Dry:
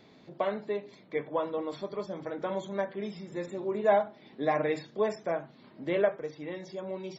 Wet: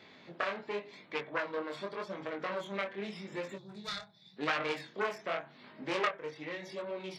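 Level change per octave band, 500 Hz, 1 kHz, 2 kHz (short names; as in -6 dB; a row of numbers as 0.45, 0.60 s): -8.5, -4.0, +3.0 dB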